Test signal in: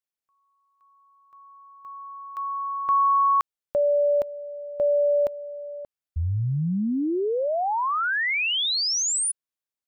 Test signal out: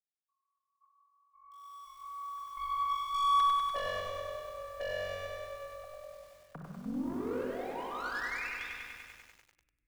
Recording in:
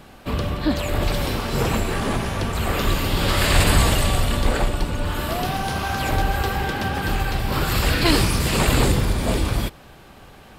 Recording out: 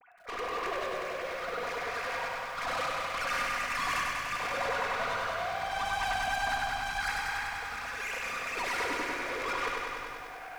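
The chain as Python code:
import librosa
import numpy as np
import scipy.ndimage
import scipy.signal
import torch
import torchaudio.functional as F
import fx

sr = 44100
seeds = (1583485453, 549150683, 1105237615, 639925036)

p1 = fx.sine_speech(x, sr)
p2 = scipy.signal.sosfilt(scipy.signal.butter(8, 2500.0, 'lowpass', fs=sr, output='sos'), p1)
p3 = fx.low_shelf(p2, sr, hz=470.0, db=-10.5)
p4 = fx.notch(p3, sr, hz=890.0, q=12.0)
p5 = fx.over_compress(p4, sr, threshold_db=-25.0, ratio=-0.5)
p6 = p4 + (p5 * librosa.db_to_amplitude(-3.0))
p7 = np.clip(p6, -10.0 ** (-23.5 / 20.0), 10.0 ** (-23.5 / 20.0))
p8 = fx.tremolo_random(p7, sr, seeds[0], hz=3.5, depth_pct=80)
p9 = fx.tube_stage(p8, sr, drive_db=27.0, bias=0.4)
p10 = p9 + fx.echo_single(p9, sr, ms=471, db=-19.0, dry=0)
p11 = fx.room_shoebox(p10, sr, seeds[1], volume_m3=3100.0, walls='mixed', distance_m=1.8)
p12 = fx.echo_crushed(p11, sr, ms=98, feedback_pct=80, bits=9, wet_db=-3.5)
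y = p12 * librosa.db_to_amplitude(-6.5)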